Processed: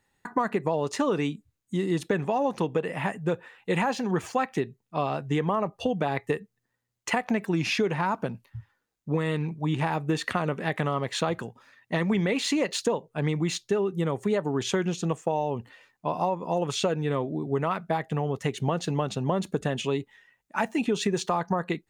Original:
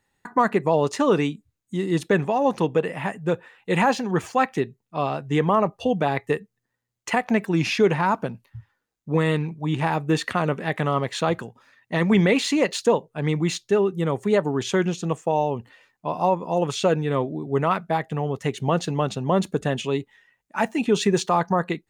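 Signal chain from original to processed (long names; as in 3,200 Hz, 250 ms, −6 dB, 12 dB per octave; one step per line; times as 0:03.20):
downward compressor, threshold −22 dBFS, peak gain reduction 9 dB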